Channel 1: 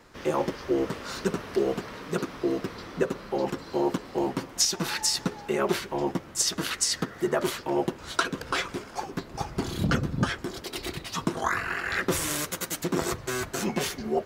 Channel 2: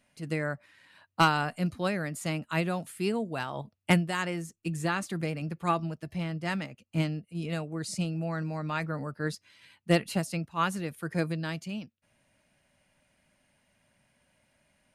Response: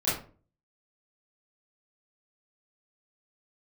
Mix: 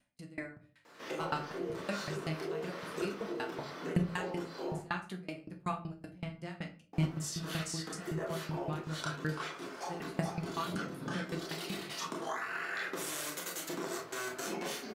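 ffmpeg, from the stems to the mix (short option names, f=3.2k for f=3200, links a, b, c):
-filter_complex "[0:a]highpass=310,acompressor=threshold=-34dB:ratio=6,adelay=850,volume=-6.5dB,asplit=3[a][b][c];[a]atrim=end=4.79,asetpts=PTS-STARTPTS,afade=t=out:st=4.786:d=0.004:c=hsin[d];[b]atrim=start=4.79:end=6.93,asetpts=PTS-STARTPTS,volume=0[e];[c]atrim=start=6.93,asetpts=PTS-STARTPTS,afade=t=in:d=0.004:c=hsin[f];[d][e][f]concat=n=3:v=0:a=1,asplit=2[g][h];[h]volume=-7.5dB[i];[1:a]flanger=delay=16:depth=3.8:speed=0.18,aeval=exprs='val(0)*pow(10,-33*if(lt(mod(5.3*n/s,1),2*abs(5.3)/1000),1-mod(5.3*n/s,1)/(2*abs(5.3)/1000),(mod(5.3*n/s,1)-2*abs(5.3)/1000)/(1-2*abs(5.3)/1000))/20)':c=same,volume=-0.5dB,asplit=3[j][k][l];[k]volume=-15dB[m];[l]apad=whole_len=666056[n];[g][n]sidechaincompress=threshold=-42dB:ratio=8:attack=5.8:release=722[o];[2:a]atrim=start_sample=2205[p];[i][m]amix=inputs=2:normalize=0[q];[q][p]afir=irnorm=-1:irlink=0[r];[o][j][r]amix=inputs=3:normalize=0"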